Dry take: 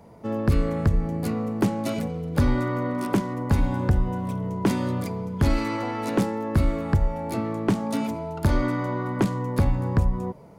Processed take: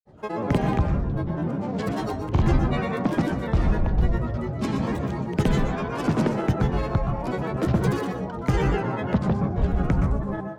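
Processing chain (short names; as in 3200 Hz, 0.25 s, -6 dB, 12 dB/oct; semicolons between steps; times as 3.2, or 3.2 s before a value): LPF 6700 Hz 12 dB/oct; grains, pitch spread up and down by 12 st; reverb RT60 0.40 s, pre-delay 0.112 s, DRR 5 dB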